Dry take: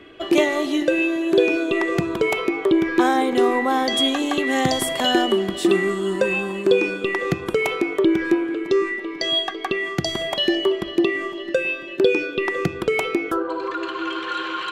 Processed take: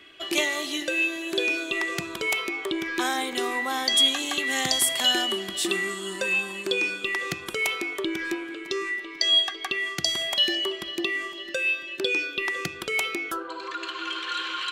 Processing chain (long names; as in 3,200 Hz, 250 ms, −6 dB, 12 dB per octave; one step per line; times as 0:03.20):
tilt shelving filter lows −9.5 dB, about 1,500 Hz
notch filter 470 Hz, Q 12
level −4 dB